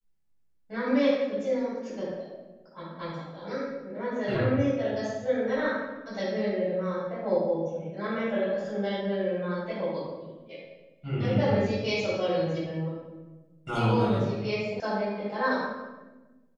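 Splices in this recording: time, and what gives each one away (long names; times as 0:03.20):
0:14.80: cut off before it has died away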